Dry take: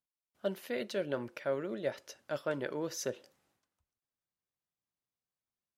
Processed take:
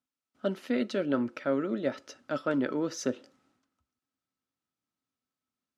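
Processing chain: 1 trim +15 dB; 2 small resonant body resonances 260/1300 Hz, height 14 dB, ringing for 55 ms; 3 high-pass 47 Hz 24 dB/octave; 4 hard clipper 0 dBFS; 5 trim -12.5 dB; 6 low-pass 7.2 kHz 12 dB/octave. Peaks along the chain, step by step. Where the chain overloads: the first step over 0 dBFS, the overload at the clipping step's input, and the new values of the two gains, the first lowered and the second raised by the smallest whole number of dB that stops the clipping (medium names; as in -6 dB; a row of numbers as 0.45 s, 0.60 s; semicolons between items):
-5.5 dBFS, -2.5 dBFS, -2.5 dBFS, -2.5 dBFS, -15.0 dBFS, -15.0 dBFS; nothing clips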